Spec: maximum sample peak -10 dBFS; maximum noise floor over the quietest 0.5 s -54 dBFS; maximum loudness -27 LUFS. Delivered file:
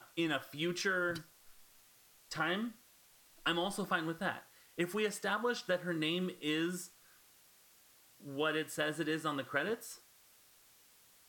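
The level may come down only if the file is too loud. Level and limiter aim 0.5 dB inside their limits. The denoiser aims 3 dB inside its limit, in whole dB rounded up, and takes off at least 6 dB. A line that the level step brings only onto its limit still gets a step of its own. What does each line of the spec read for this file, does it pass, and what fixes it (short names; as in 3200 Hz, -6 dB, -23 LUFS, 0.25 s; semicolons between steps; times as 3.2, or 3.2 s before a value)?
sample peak -19.5 dBFS: OK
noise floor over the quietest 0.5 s -65 dBFS: OK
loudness -36.5 LUFS: OK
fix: none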